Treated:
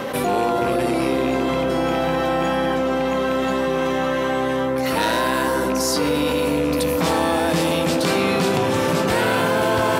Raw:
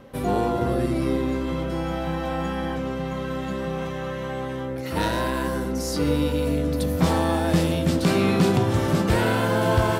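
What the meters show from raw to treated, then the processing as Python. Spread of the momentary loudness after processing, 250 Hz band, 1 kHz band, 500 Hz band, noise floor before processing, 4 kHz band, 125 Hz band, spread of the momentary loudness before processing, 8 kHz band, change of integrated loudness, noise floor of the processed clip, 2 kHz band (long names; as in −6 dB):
2 LU, +2.0 dB, +6.5 dB, +5.5 dB, −30 dBFS, +7.0 dB, −4.0 dB, 9 LU, +7.0 dB, +4.0 dB, −21 dBFS, +6.5 dB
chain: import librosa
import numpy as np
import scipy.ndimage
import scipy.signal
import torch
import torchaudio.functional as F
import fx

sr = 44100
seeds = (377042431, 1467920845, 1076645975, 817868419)

y = fx.rattle_buzz(x, sr, strikes_db=-24.0, level_db=-29.0)
y = fx.highpass(y, sr, hz=490.0, slope=6)
y = fx.echo_bbd(y, sr, ms=504, stages=4096, feedback_pct=71, wet_db=-9.0)
y = fx.env_flatten(y, sr, amount_pct=70)
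y = F.gain(torch.from_numpy(y), 3.5).numpy()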